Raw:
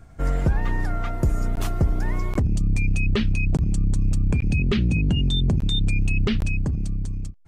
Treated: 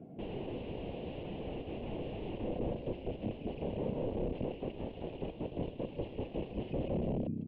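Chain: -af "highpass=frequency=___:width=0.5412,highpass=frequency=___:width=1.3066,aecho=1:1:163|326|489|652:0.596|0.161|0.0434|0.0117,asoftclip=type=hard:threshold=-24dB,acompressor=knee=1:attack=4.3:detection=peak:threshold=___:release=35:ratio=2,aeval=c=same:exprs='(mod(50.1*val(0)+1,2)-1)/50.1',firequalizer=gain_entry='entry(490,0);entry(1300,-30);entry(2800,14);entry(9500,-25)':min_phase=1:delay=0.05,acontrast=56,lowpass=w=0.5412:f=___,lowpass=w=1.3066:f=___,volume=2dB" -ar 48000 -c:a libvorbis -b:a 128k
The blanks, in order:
180, 180, -32dB, 1.2k, 1.2k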